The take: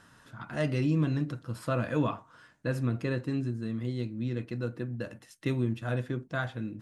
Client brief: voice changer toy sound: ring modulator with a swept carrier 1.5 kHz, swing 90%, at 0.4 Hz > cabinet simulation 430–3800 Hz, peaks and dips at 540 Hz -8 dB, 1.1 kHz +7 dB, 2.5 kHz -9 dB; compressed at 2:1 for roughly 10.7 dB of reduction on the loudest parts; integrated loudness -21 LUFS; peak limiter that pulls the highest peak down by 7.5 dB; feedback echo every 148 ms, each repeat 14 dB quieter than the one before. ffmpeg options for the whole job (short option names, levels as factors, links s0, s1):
-af "acompressor=threshold=0.00708:ratio=2,alimiter=level_in=2.99:limit=0.0631:level=0:latency=1,volume=0.335,aecho=1:1:148|296:0.2|0.0399,aeval=exprs='val(0)*sin(2*PI*1500*n/s+1500*0.9/0.4*sin(2*PI*0.4*n/s))':c=same,highpass=430,equalizer=f=540:t=q:w=4:g=-8,equalizer=f=1100:t=q:w=4:g=7,equalizer=f=2500:t=q:w=4:g=-9,lowpass=f=3800:w=0.5412,lowpass=f=3800:w=1.3066,volume=18.8"